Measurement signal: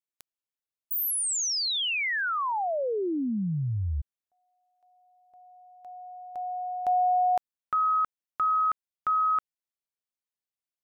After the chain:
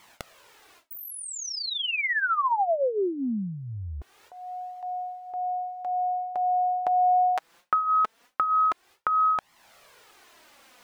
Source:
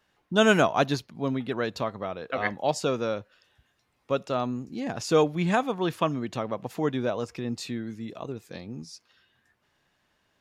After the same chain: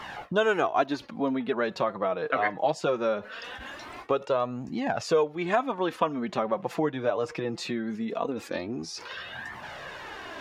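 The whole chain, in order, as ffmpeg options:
-filter_complex "[0:a]areverse,acompressor=mode=upward:threshold=-36dB:ratio=2.5:attack=12:release=66:knee=2.83:detection=peak,areverse,flanger=delay=0.9:depth=6:regen=13:speed=0.21:shape=triangular,acompressor=threshold=-41dB:ratio=3:attack=14:release=573:knee=6:detection=peak,asplit=2[a][b];[b]highpass=f=720:p=1,volume=17dB,asoftclip=type=tanh:threshold=-7dB[c];[a][c]amix=inputs=2:normalize=0,lowpass=f=1.1k:p=1,volume=-6dB,volume=9dB"

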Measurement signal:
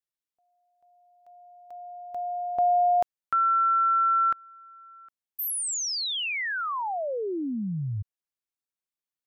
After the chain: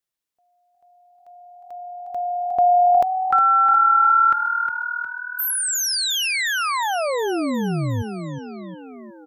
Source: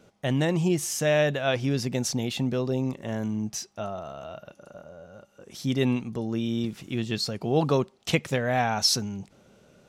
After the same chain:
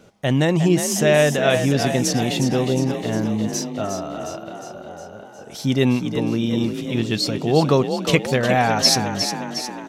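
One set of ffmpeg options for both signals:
-filter_complex "[0:a]asplit=8[a][b][c][d][e][f][g][h];[b]adelay=359,afreqshift=39,volume=-8dB[i];[c]adelay=718,afreqshift=78,volume=-12.6dB[j];[d]adelay=1077,afreqshift=117,volume=-17.2dB[k];[e]adelay=1436,afreqshift=156,volume=-21.7dB[l];[f]adelay=1795,afreqshift=195,volume=-26.3dB[m];[g]adelay=2154,afreqshift=234,volume=-30.9dB[n];[h]adelay=2513,afreqshift=273,volume=-35.5dB[o];[a][i][j][k][l][m][n][o]amix=inputs=8:normalize=0,volume=6.5dB"

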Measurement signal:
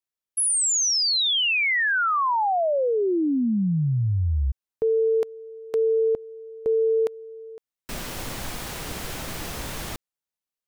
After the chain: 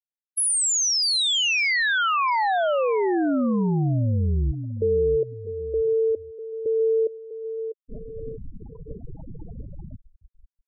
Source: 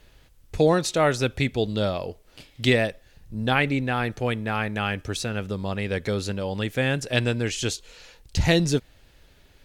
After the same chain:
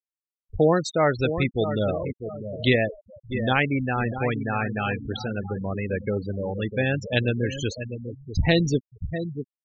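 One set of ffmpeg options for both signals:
-filter_complex "[0:a]asplit=2[a][b];[b]adelay=648,lowpass=f=5k:p=1,volume=-9dB,asplit=2[c][d];[d]adelay=648,lowpass=f=5k:p=1,volume=0.45,asplit=2[e][f];[f]adelay=648,lowpass=f=5k:p=1,volume=0.45,asplit=2[g][h];[h]adelay=648,lowpass=f=5k:p=1,volume=0.45,asplit=2[i][j];[j]adelay=648,lowpass=f=5k:p=1,volume=0.45[k];[a][c][e][g][i][k]amix=inputs=6:normalize=0,afftfilt=real='re*gte(hypot(re,im),0.0794)':imag='im*gte(hypot(re,im),0.0794)':win_size=1024:overlap=0.75"

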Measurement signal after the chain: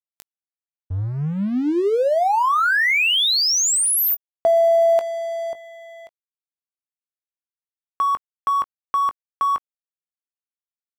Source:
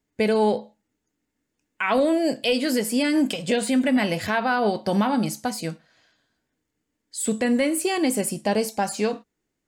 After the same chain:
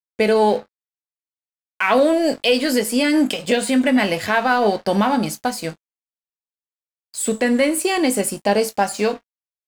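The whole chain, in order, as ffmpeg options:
-filter_complex "[0:a]bass=f=250:g=-6,treble=f=4k:g=-1,aeval=exprs='sgn(val(0))*max(abs(val(0))-0.00631,0)':c=same,asplit=2[a][b];[b]adelay=20,volume=-13dB[c];[a][c]amix=inputs=2:normalize=0,volume=6dB"

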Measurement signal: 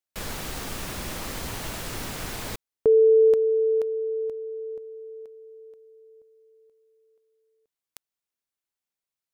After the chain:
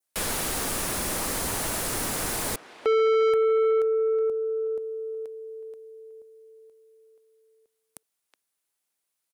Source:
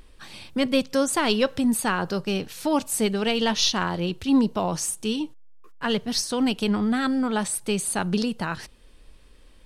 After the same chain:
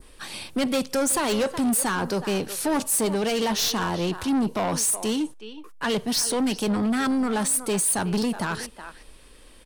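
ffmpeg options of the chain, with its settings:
-filter_complex "[0:a]asplit=2[a][b];[b]adelay=370,highpass=300,lowpass=3.4k,asoftclip=type=hard:threshold=-17.5dB,volume=-16dB[c];[a][c]amix=inputs=2:normalize=0,acrossover=split=220[d][e];[e]acontrast=62[f];[d][f]amix=inputs=2:normalize=0,equalizer=f=10k:t=o:w=0.63:g=7.5,asoftclip=type=tanh:threshold=-19.5dB,adynamicequalizer=threshold=0.00891:dfrequency=3000:dqfactor=1.1:tfrequency=3000:tqfactor=1.1:attack=5:release=100:ratio=0.375:range=2:mode=cutabove:tftype=bell"

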